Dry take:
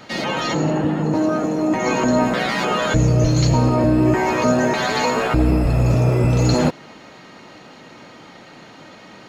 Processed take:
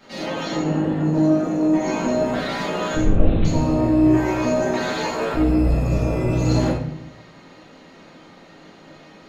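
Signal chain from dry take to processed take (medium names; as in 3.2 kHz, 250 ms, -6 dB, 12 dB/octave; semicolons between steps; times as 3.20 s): 3.02–3.45 s: LPC vocoder at 8 kHz whisper; reverberation RT60 0.70 s, pre-delay 5 ms, DRR -7 dB; trim -12.5 dB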